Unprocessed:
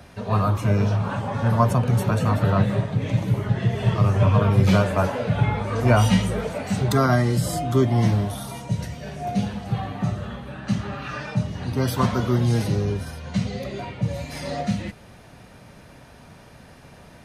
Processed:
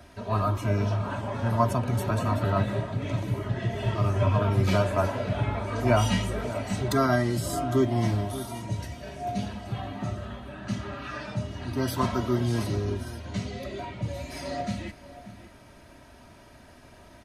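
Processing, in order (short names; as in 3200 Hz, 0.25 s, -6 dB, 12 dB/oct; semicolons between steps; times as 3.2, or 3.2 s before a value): comb 3.1 ms, depth 54%; outdoor echo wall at 100 m, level -14 dB; gain -5 dB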